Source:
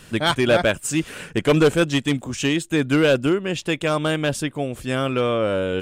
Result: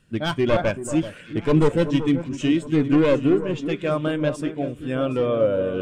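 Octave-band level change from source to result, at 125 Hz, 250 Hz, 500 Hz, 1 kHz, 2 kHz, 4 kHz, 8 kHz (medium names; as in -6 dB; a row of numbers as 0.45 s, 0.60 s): -0.5 dB, +1.0 dB, -1.0 dB, -3.5 dB, -7.5 dB, -8.5 dB, under -10 dB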